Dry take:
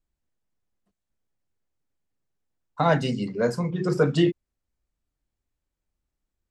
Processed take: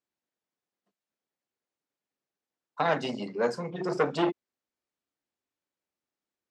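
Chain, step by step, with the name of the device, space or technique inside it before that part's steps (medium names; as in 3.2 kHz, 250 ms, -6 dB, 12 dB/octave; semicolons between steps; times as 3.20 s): public-address speaker with an overloaded transformer (transformer saturation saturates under 790 Hz; band-pass 280–6600 Hz); trim -1 dB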